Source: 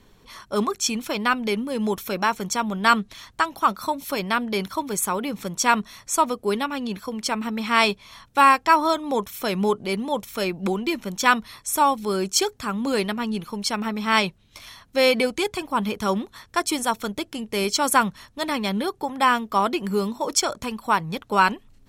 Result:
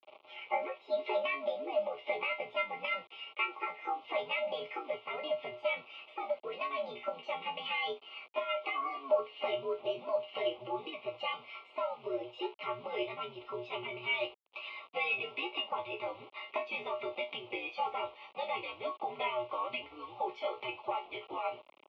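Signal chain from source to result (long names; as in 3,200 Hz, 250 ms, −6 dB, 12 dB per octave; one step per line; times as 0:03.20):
pitch glide at a constant tempo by +9 semitones ending unshifted
dynamic equaliser 660 Hz, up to +7 dB, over −42 dBFS, Q 4
comb filter 4.1 ms, depth 96%
automatic gain control gain up to 8 dB
brickwall limiter −10.5 dBFS, peak gain reduction 9.5 dB
downward compressor 10 to 1, threshold −27 dBFS, peak gain reduction 13.5 dB
pitch-shifted copies added +5 semitones −16 dB
parametric band 2,200 Hz +11.5 dB 0.9 octaves
resonators tuned to a chord B2 fifth, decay 0.21 s
bit reduction 9 bits
Butterworth band-reject 1,800 Hz, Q 1.3
single-sideband voice off tune −130 Hz 560–3,000 Hz
level +8.5 dB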